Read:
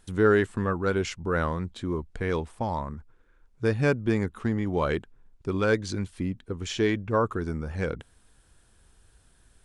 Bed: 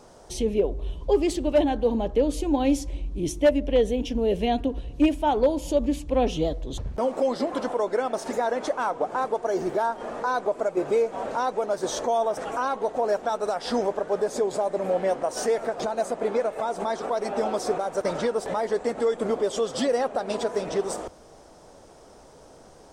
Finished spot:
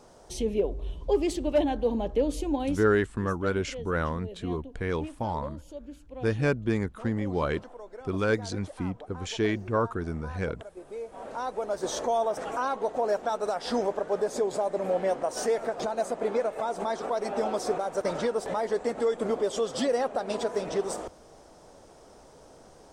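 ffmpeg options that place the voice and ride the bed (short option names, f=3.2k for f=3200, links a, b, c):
-filter_complex "[0:a]adelay=2600,volume=-2dB[a];[1:a]volume=13dB,afade=t=out:st=2.43:d=0.55:silence=0.16788,afade=t=in:st=10.89:d=1.05:silence=0.149624[b];[a][b]amix=inputs=2:normalize=0"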